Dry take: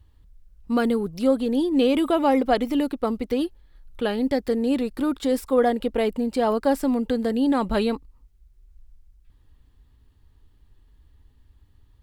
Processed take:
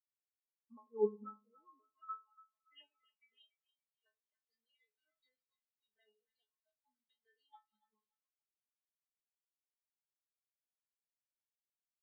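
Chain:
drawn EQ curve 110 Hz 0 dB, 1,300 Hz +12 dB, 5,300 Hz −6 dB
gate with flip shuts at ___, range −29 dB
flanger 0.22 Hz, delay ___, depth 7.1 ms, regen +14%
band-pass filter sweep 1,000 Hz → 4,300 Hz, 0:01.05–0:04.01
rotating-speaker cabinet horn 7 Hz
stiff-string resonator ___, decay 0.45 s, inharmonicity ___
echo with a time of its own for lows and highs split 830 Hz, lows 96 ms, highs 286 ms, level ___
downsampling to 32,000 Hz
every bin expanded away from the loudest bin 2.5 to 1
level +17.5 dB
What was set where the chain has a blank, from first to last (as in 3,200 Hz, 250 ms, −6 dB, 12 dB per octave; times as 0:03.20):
−6 dBFS, 1.2 ms, 210 Hz, 0.002, −7.5 dB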